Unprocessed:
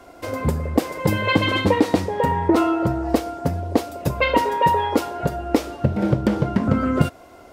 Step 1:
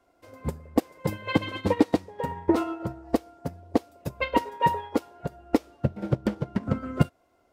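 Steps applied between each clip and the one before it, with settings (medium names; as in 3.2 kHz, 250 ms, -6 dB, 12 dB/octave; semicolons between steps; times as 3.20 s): upward expansion 2.5:1, over -25 dBFS; trim -2 dB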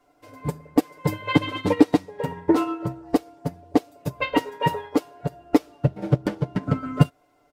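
comb 6.8 ms, depth 85%; trim +1.5 dB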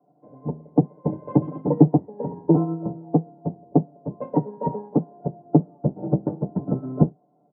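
octave divider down 1 oct, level +3 dB; elliptic band-pass 150–830 Hz, stop band 80 dB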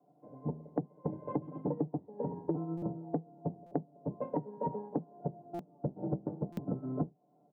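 compression 10:1, threshold -26 dBFS, peak gain reduction 18.5 dB; buffer glitch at 2.77/3.66/5.54/6.52 s, samples 256, times 8; trim -4.5 dB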